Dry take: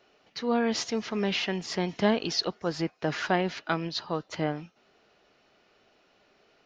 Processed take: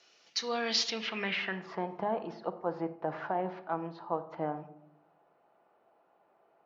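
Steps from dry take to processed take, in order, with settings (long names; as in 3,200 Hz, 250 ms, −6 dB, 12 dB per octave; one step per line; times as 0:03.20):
high-pass filter 50 Hz
spectral tilt +3 dB per octave
brickwall limiter −17.5 dBFS, peak gain reduction 8 dB
low-pass filter sweep 6,200 Hz → 870 Hz, 0:00.55–0:01.88
on a send: convolution reverb RT60 0.70 s, pre-delay 6 ms, DRR 8 dB
on the sum: level −4.5 dB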